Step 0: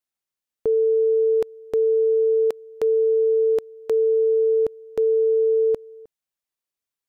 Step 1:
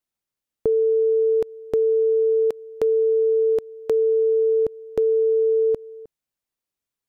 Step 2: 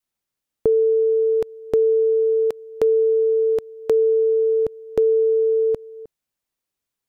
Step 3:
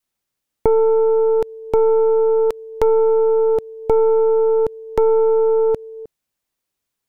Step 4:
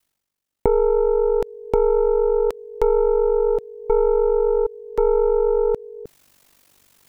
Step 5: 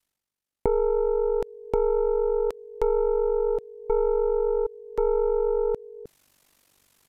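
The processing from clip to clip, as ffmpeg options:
ffmpeg -i in.wav -af "lowshelf=frequency=440:gain=7,acompressor=threshold=-17dB:ratio=6" out.wav
ffmpeg -i in.wav -af "adynamicequalizer=threshold=0.02:dfrequency=330:dqfactor=0.71:tfrequency=330:tqfactor=0.71:attack=5:release=100:ratio=0.375:range=2:mode=cutabove:tftype=bell,volume=3dB" out.wav
ffmpeg -i in.wav -af "aeval=exprs='0.398*(cos(1*acos(clip(val(0)/0.398,-1,1)))-cos(1*PI/2))+0.158*(cos(2*acos(clip(val(0)/0.398,-1,1)))-cos(2*PI/2))+0.0251*(cos(5*acos(clip(val(0)/0.398,-1,1)))-cos(5*PI/2))':channel_layout=same,volume=1.5dB" out.wav
ffmpeg -i in.wav -af "areverse,acompressor=mode=upward:threshold=-33dB:ratio=2.5,areverse,aeval=exprs='val(0)*sin(2*PI*24*n/s)':channel_layout=same" out.wav
ffmpeg -i in.wav -af "aresample=32000,aresample=44100,volume=-5.5dB" out.wav

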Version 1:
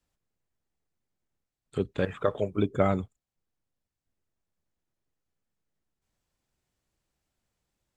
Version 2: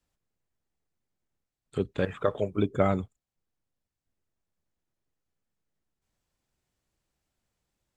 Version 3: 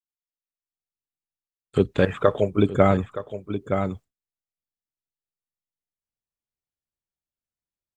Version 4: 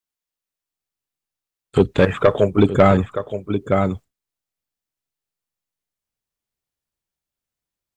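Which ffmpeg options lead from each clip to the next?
ffmpeg -i in.wav -af anull out.wav
ffmpeg -i in.wav -af "aecho=1:1:920:0.237,agate=range=-33dB:threshold=-48dB:ratio=3:detection=peak,dynaudnorm=framelen=270:gausssize=5:maxgain=15.5dB,volume=-1dB" out.wav
ffmpeg -i in.wav -af "asoftclip=type=tanh:threshold=-10.5dB,volume=7dB" out.wav

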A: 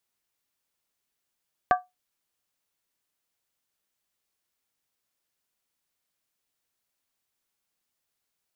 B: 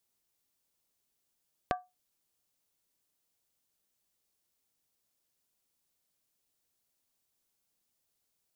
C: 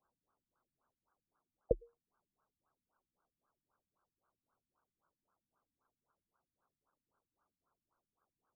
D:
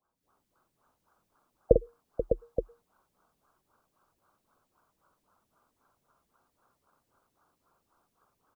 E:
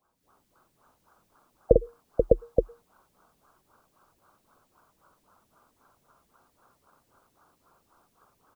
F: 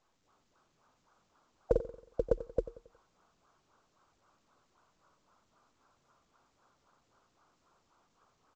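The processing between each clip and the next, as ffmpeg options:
ffmpeg -i in.wav -af "equalizer=frequency=1700:width=0.59:gain=-7,acompressor=threshold=-32dB:ratio=10,volume=2.5dB" out.wav
ffmpeg -i in.wav -af "lowshelf=frequency=360:gain=8.5,aeval=exprs='val(0)*sin(2*PI*1200*n/s)':channel_layout=same,afftfilt=real='re*lt(b*sr/1024,280*pow(1700/280,0.5+0.5*sin(2*PI*3.8*pts/sr)))':imag='im*lt(b*sr/1024,280*pow(1700/280,0.5+0.5*sin(2*PI*3.8*pts/sr)))':win_size=1024:overlap=0.75,volume=9dB" out.wav
ffmpeg -i in.wav -filter_complex "[0:a]dynaudnorm=framelen=140:gausssize=3:maxgain=12dB,asplit=2[link_01][link_02];[link_02]aecho=0:1:48|485|604|874:0.473|0.282|0.447|0.316[link_03];[link_01][link_03]amix=inputs=2:normalize=0" out.wav
ffmpeg -i in.wav -af "alimiter=limit=-11dB:level=0:latency=1:release=137,volume=8dB" out.wav
ffmpeg -i in.wav -af "asoftclip=type=tanh:threshold=-4.5dB,aecho=1:1:91|182|273|364:0.178|0.0747|0.0314|0.0132,volume=-8.5dB" -ar 16000 -c:a pcm_mulaw out.wav

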